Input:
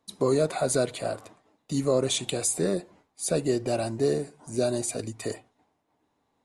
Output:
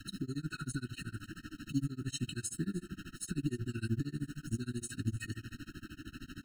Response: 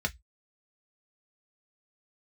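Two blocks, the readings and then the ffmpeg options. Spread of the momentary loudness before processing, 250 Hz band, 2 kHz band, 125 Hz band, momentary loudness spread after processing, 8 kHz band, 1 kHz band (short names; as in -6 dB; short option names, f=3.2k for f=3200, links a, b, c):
9 LU, -7.0 dB, -6.0 dB, -3.0 dB, 11 LU, -13.5 dB, -19.0 dB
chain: -filter_complex "[0:a]aeval=exprs='val(0)+0.5*0.0133*sgn(val(0))':c=same,lowpass=f=3.9k:p=1,alimiter=level_in=0.5dB:limit=-24dB:level=0:latency=1:release=130,volume=-0.5dB,asuperstop=centerf=650:order=12:qfactor=0.71,asplit=2[a][b];[b]aecho=0:1:289:0.119[c];[a][c]amix=inputs=2:normalize=0,adynamicequalizer=threshold=0.00282:dfrequency=460:dqfactor=1.2:tfrequency=460:tqfactor=1.2:attack=5:release=100:ratio=0.375:range=2.5:mode=cutabove:tftype=bell,tremolo=f=13:d=0.98,acrusher=bits=8:mode=log:mix=0:aa=0.000001,areverse,acompressor=mode=upward:threshold=-51dB:ratio=2.5,areverse,lowshelf=f=84:g=8,afftfilt=real='re*eq(mod(floor(b*sr/1024/630),2),0)':imag='im*eq(mod(floor(b*sr/1024/630),2),0)':win_size=1024:overlap=0.75,volume=3dB"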